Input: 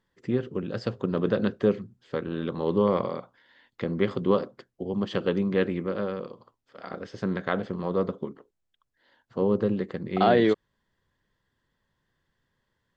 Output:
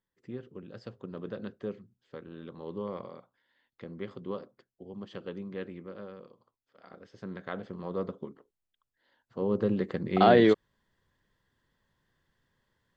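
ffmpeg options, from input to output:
ffmpeg -i in.wav -af "volume=0.5dB,afade=type=in:start_time=7.08:duration=0.98:silence=0.446684,afade=type=in:start_time=9.39:duration=0.53:silence=0.421697" out.wav

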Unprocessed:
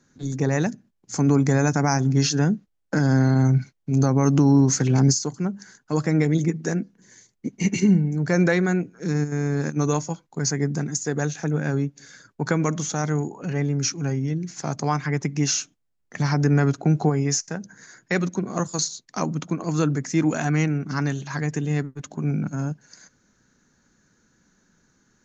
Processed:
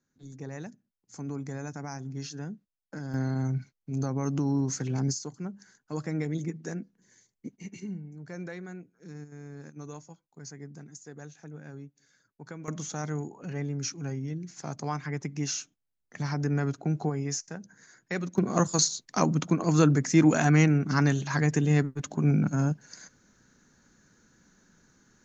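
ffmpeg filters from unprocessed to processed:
ffmpeg -i in.wav -af "asetnsamples=nb_out_samples=441:pad=0,asendcmd='3.14 volume volume -11dB;7.56 volume volume -20dB;12.68 volume volume -9dB;18.38 volume volume 1dB',volume=-17.5dB" out.wav

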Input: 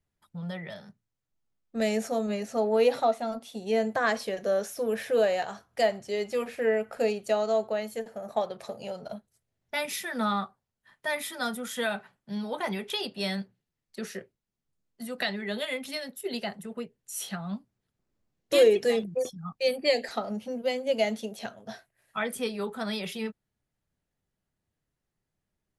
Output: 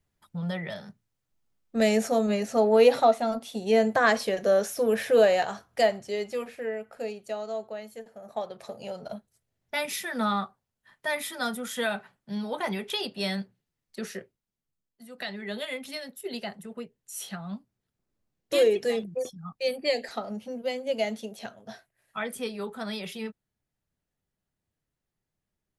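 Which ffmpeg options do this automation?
ffmpeg -i in.wav -af "volume=22dB,afade=type=out:start_time=5.43:duration=1.28:silence=0.251189,afade=type=in:start_time=8.16:duration=0.92:silence=0.375837,afade=type=out:start_time=14.1:duration=0.95:silence=0.251189,afade=type=in:start_time=15.05:duration=0.43:silence=0.354813" out.wav

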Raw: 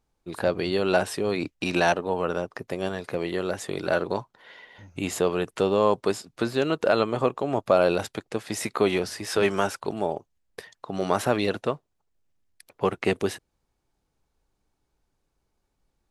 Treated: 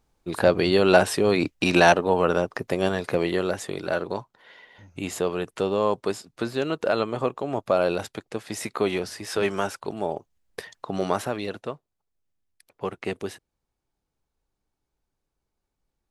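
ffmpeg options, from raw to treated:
ffmpeg -i in.wav -af "volume=12.5dB,afade=type=out:start_time=3.14:duration=0.67:silence=0.421697,afade=type=in:start_time=9.98:duration=0.74:silence=0.446684,afade=type=out:start_time=10.72:duration=0.59:silence=0.281838" out.wav

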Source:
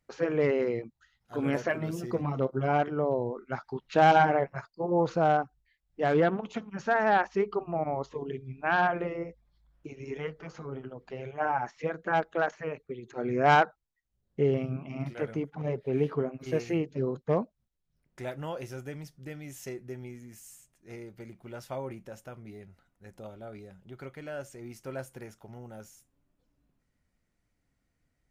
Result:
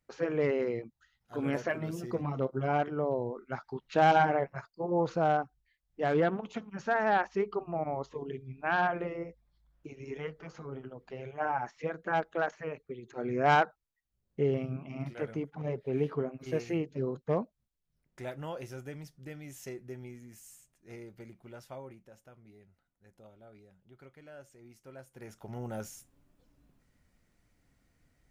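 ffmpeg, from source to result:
ffmpeg -i in.wav -af "volume=15.5dB,afade=type=out:start_time=21.15:duration=0.86:silence=0.375837,afade=type=in:start_time=25.12:duration=0.14:silence=0.334965,afade=type=in:start_time=25.26:duration=0.42:silence=0.354813" out.wav

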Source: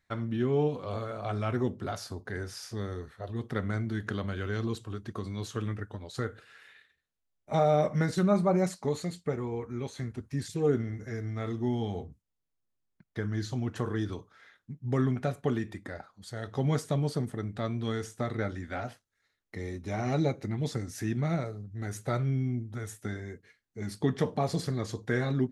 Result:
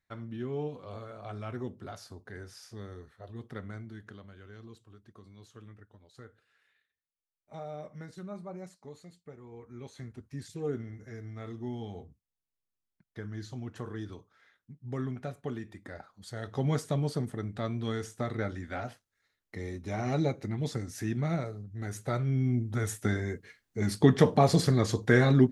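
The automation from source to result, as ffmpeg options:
ffmpeg -i in.wav -af "volume=16dB,afade=type=out:start_time=3.43:duration=0.83:silence=0.354813,afade=type=in:start_time=9.4:duration=0.56:silence=0.334965,afade=type=in:start_time=15.72:duration=0.41:silence=0.473151,afade=type=in:start_time=22.26:duration=0.56:silence=0.398107" out.wav

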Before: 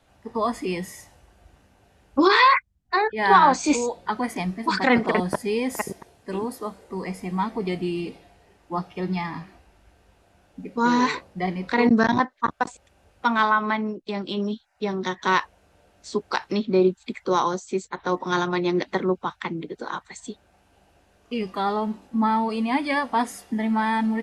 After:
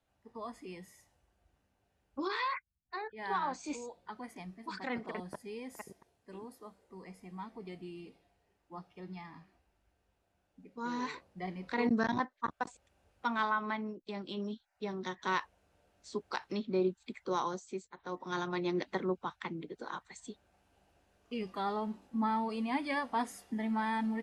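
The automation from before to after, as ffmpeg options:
ffmpeg -i in.wav -af "volume=-2.5dB,afade=type=in:start_time=10.75:duration=1.1:silence=0.446684,afade=type=out:start_time=17.66:duration=0.26:silence=0.398107,afade=type=in:start_time=17.92:duration=0.71:silence=0.334965" out.wav

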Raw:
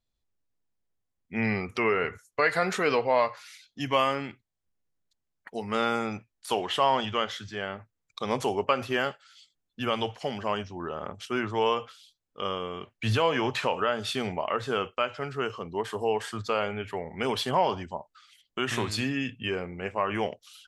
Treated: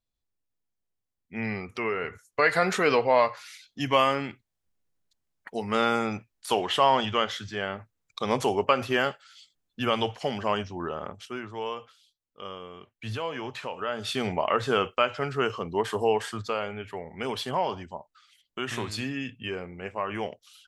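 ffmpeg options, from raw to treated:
ffmpeg -i in.wav -af "volume=14.5dB,afade=type=in:start_time=2.02:duration=0.48:silence=0.473151,afade=type=out:start_time=10.84:duration=0.56:silence=0.298538,afade=type=in:start_time=13.76:duration=0.66:silence=0.251189,afade=type=out:start_time=15.99:duration=0.61:silence=0.446684" out.wav

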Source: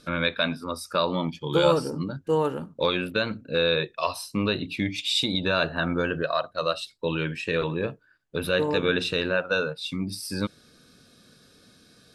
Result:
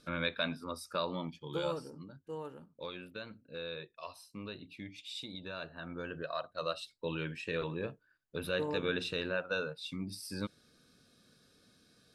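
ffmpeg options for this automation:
ffmpeg -i in.wav -af "afade=type=out:start_time=0.7:duration=1.29:silence=0.316228,afade=type=in:start_time=5.81:duration=0.82:silence=0.354813" out.wav

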